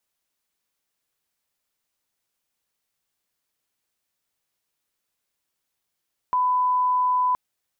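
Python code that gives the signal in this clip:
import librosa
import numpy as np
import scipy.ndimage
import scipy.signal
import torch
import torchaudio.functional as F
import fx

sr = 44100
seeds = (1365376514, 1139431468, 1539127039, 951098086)

y = fx.lineup_tone(sr, length_s=1.02, level_db=-18.0)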